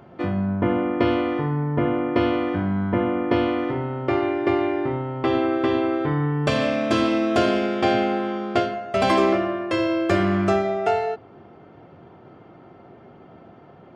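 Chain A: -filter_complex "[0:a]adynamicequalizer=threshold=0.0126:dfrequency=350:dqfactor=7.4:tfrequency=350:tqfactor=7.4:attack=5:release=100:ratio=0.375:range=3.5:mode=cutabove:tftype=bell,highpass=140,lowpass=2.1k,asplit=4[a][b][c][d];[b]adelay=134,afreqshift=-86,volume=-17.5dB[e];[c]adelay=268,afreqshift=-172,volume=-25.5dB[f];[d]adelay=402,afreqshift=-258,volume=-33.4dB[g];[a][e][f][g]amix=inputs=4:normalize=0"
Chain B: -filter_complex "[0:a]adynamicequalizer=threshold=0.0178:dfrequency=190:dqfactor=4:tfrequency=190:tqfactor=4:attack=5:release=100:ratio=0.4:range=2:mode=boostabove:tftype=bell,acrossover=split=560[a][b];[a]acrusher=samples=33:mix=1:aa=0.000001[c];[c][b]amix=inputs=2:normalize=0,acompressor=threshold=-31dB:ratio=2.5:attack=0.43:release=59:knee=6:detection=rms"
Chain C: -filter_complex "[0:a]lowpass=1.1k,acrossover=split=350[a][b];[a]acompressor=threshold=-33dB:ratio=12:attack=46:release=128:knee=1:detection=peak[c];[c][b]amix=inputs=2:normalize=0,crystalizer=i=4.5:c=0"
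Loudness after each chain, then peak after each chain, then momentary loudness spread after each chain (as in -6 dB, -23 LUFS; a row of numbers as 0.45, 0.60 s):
-24.0, -31.5, -24.5 LUFS; -8.5, -19.0, -7.0 dBFS; 4, 17, 6 LU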